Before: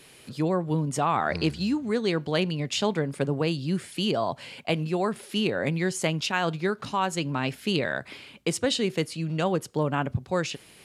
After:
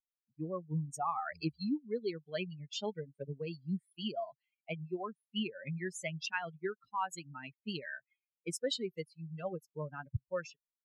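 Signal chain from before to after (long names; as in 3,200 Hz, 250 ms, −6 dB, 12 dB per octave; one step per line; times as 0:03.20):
spectral dynamics exaggerated over time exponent 3
low-pass that shuts in the quiet parts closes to 1,100 Hz, open at −30.5 dBFS
level −4.5 dB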